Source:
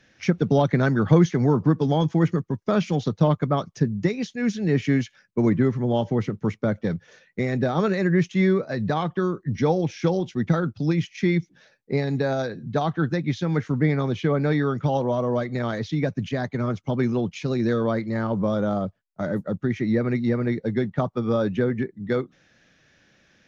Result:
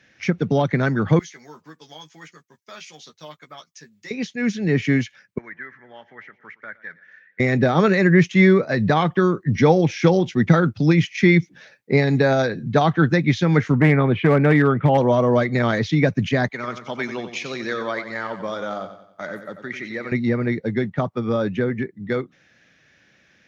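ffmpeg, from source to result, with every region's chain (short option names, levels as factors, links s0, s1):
-filter_complex "[0:a]asettb=1/sr,asplit=3[s0][s1][s2];[s0]atrim=end=1.194[s3];[s1]atrim=start=1.19:end=4.11,asetpts=PTS-STARTPTS,afade=t=in:d=0.004:c=qsin,afade=t=out:st=2.916:d=0.004:c=qsin,aderivative,asplit=2[s4][s5];[s5]adelay=13,volume=0.562[s6];[s4][s6]amix=inputs=2:normalize=0,atrim=end_sample=128772[s7];[s2]atrim=start=4.106[s8];[s3][s7]acrossfade=d=0.004:c1=hsin:c2=qsin[s9];[s9][s8]acrossfade=d=0.004:c1=qsin:c2=hsin,asettb=1/sr,asplit=3[s10][s11][s12];[s10]atrim=end=5.384[s13];[s11]atrim=start=5.38:end=7.4,asetpts=PTS-STARTPTS,afade=t=in:d=0.004:c=qsin,afade=t=out:st=2.016:d=0.004:c=qsin,bandpass=f=1700:t=q:w=5.6,aecho=1:1:115|230|345|460:0.0944|0.0538|0.0307|0.0175,atrim=end_sample=89082[s14];[s12]atrim=start=7.396[s15];[s13][s14]acrossfade=d=0.004:c1=hsin:c2=qsin[s16];[s16][s15]acrossfade=d=0.004:c1=qsin:c2=hsin,asettb=1/sr,asplit=3[s17][s18][s19];[s17]atrim=end=13.754[s20];[s18]atrim=start=13.75:end=14.98,asetpts=PTS-STARTPTS,afade=t=in:d=0.004:c=qsin,afade=t=out:st=1.226:d=0.004:c=qsin,lowpass=f=2900:w=0.5412,lowpass=f=2900:w=1.3066,asoftclip=type=hard:threshold=0.178[s21];[s19]atrim=start=14.976[s22];[s20][s21]acrossfade=d=0.004:c1=hsin:c2=qsin[s23];[s23][s22]acrossfade=d=0.004:c1=qsin:c2=hsin,asettb=1/sr,asplit=3[s24][s25][s26];[s24]atrim=end=16.484[s27];[s25]atrim=start=16.48:end=20.12,asetpts=PTS-STARTPTS,afade=t=in:d=0.004:c=qsin,afade=t=out:st=3.636:d=0.004:c=qsin,highpass=f=1300:p=1,aecho=1:1:91|182|273|364|455:0.316|0.142|0.064|0.0288|0.013,atrim=end_sample=160524[s28];[s26]atrim=start=20.116[s29];[s27][s28]acrossfade=d=0.004:c1=hsin:c2=qsin[s30];[s30][s29]acrossfade=d=0.004:c1=qsin:c2=hsin,highpass=57,equalizer=f=2100:w=1.7:g=5.5,dynaudnorm=f=520:g=21:m=2.66"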